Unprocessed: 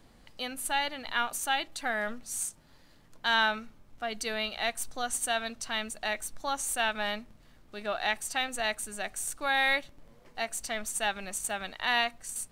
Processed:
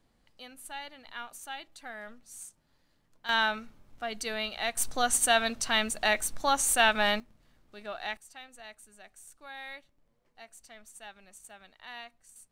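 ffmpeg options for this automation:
ffmpeg -i in.wav -af "asetnsamples=nb_out_samples=441:pad=0,asendcmd='3.29 volume volume -1dB;4.77 volume volume 6dB;7.2 volume volume -6.5dB;8.17 volume volume -17dB',volume=-11.5dB" out.wav

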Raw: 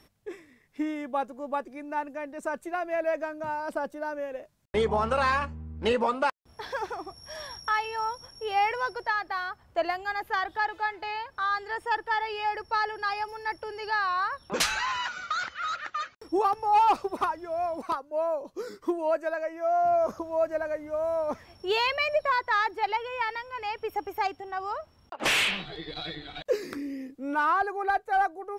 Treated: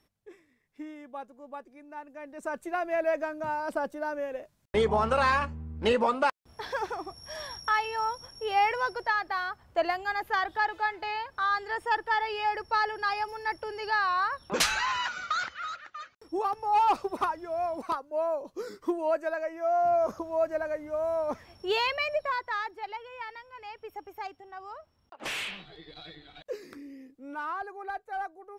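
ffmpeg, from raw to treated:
ffmpeg -i in.wav -af "volume=10.5dB,afade=type=in:start_time=2.06:duration=0.7:silence=0.266073,afade=type=out:start_time=15.36:duration=0.5:silence=0.266073,afade=type=in:start_time=15.86:duration=1.22:silence=0.316228,afade=type=out:start_time=21.69:duration=1.13:silence=0.354813" out.wav

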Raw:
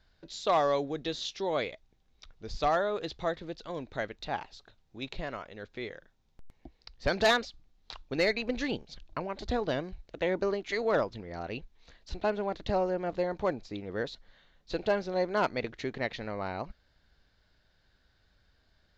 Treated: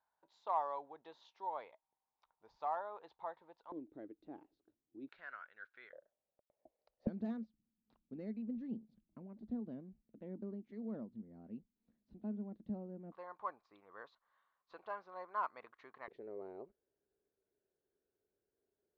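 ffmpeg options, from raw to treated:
ffmpeg -i in.wav -af "asetnsamples=nb_out_samples=441:pad=0,asendcmd='3.72 bandpass f 310;5.09 bandpass f 1500;5.93 bandpass f 590;7.07 bandpass f 220;13.12 bandpass f 1100;16.08 bandpass f 400',bandpass=frequency=920:width_type=q:width=7.4:csg=0" out.wav

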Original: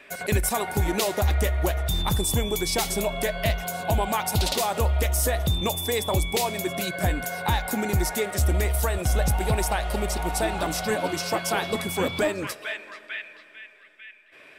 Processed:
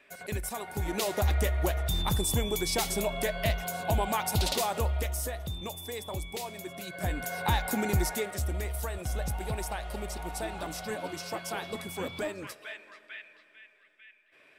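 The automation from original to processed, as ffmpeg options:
ffmpeg -i in.wav -af "volume=5.5dB,afade=type=in:start_time=0.69:duration=0.5:silence=0.446684,afade=type=out:start_time=4.59:duration=0.79:silence=0.375837,afade=type=in:start_time=6.84:duration=0.59:silence=0.334965,afade=type=out:start_time=7.95:duration=0.51:silence=0.446684" out.wav

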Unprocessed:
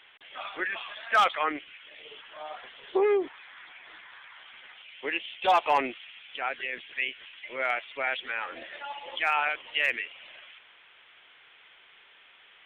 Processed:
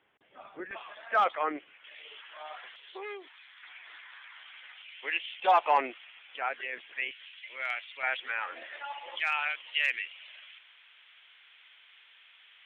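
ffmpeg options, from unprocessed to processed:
ffmpeg -i in.wav -af "asetnsamples=nb_out_samples=441:pad=0,asendcmd='0.71 bandpass f 530;1.84 bandpass f 1900;2.76 bandpass f 6000;3.63 bandpass f 2400;5.4 bandpass f 980;7.11 bandpass f 4700;8.03 bandpass f 1400;9.2 bandpass f 3900',bandpass=frequency=180:width_type=q:width=0.6:csg=0" out.wav

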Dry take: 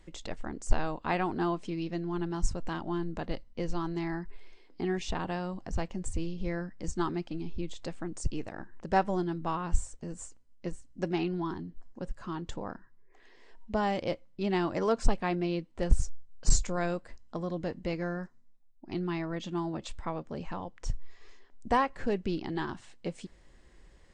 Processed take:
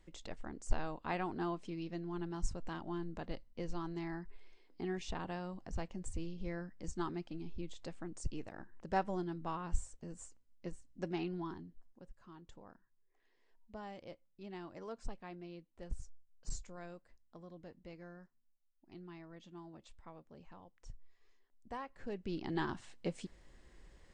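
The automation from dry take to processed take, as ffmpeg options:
ffmpeg -i in.wav -af "volume=8dB,afade=type=out:start_time=11.4:duration=0.65:silence=0.298538,afade=type=in:start_time=21.79:duration=0.44:silence=0.421697,afade=type=in:start_time=22.23:duration=0.35:silence=0.375837" out.wav

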